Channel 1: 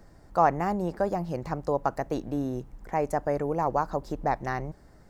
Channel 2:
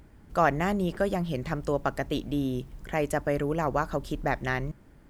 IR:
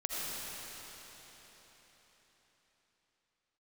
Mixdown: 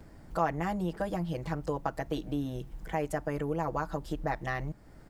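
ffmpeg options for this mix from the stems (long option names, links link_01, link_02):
-filter_complex "[0:a]bandreject=frequency=6000:width=12,volume=-1.5dB[link_01];[1:a]adelay=5.8,volume=-0.5dB[link_02];[link_01][link_02]amix=inputs=2:normalize=0,acompressor=threshold=-41dB:ratio=1.5"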